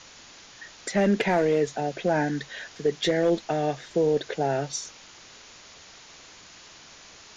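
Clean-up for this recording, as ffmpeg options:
-af "afwtdn=0.0063"

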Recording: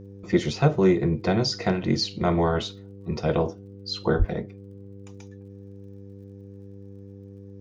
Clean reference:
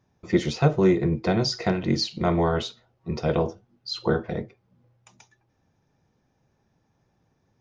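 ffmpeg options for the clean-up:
-filter_complex "[0:a]adeclick=t=4,bandreject=f=98.9:t=h:w=4,bandreject=f=197.8:t=h:w=4,bandreject=f=296.7:t=h:w=4,bandreject=f=395.6:t=h:w=4,bandreject=f=494.5:t=h:w=4,asplit=3[s0][s1][s2];[s0]afade=t=out:st=4.18:d=0.02[s3];[s1]highpass=f=140:w=0.5412,highpass=f=140:w=1.3066,afade=t=in:st=4.18:d=0.02,afade=t=out:st=4.3:d=0.02[s4];[s2]afade=t=in:st=4.3:d=0.02[s5];[s3][s4][s5]amix=inputs=3:normalize=0"

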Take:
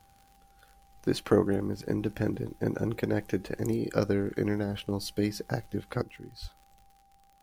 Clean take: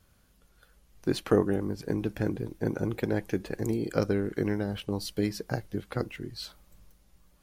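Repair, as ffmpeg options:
-filter_complex "[0:a]adeclick=t=4,bandreject=f=790:w=30,asplit=3[s0][s1][s2];[s0]afade=t=out:st=6.41:d=0.02[s3];[s1]highpass=f=140:w=0.5412,highpass=f=140:w=1.3066,afade=t=in:st=6.41:d=0.02,afade=t=out:st=6.53:d=0.02[s4];[s2]afade=t=in:st=6.53:d=0.02[s5];[s3][s4][s5]amix=inputs=3:normalize=0,asetnsamples=n=441:p=0,asendcmd='6.02 volume volume 7dB',volume=1"

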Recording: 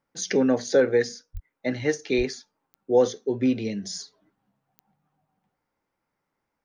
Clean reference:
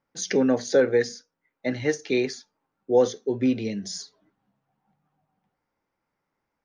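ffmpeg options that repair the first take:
-filter_complex "[0:a]adeclick=t=4,asplit=3[s0][s1][s2];[s0]afade=t=out:st=1.33:d=0.02[s3];[s1]highpass=f=140:w=0.5412,highpass=f=140:w=1.3066,afade=t=in:st=1.33:d=0.02,afade=t=out:st=1.45:d=0.02[s4];[s2]afade=t=in:st=1.45:d=0.02[s5];[s3][s4][s5]amix=inputs=3:normalize=0,asplit=3[s6][s7][s8];[s6]afade=t=out:st=2.17:d=0.02[s9];[s7]highpass=f=140:w=0.5412,highpass=f=140:w=1.3066,afade=t=in:st=2.17:d=0.02,afade=t=out:st=2.29:d=0.02[s10];[s8]afade=t=in:st=2.29:d=0.02[s11];[s9][s10][s11]amix=inputs=3:normalize=0"

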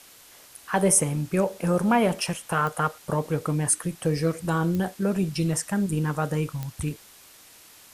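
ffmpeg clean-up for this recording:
-af "adeclick=t=4,afftdn=nr=20:nf=-51"

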